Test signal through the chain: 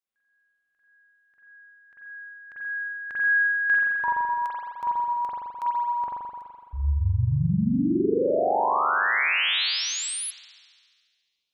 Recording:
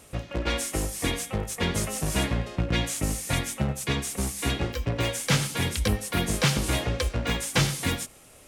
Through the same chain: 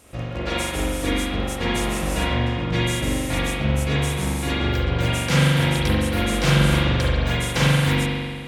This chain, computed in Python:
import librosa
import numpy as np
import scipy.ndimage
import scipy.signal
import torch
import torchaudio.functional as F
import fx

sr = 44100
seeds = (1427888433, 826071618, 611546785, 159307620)

y = fx.rev_spring(x, sr, rt60_s=1.9, pass_ms=(42,), chirp_ms=30, drr_db=-7.5)
y = y * librosa.db_to_amplitude(-1.5)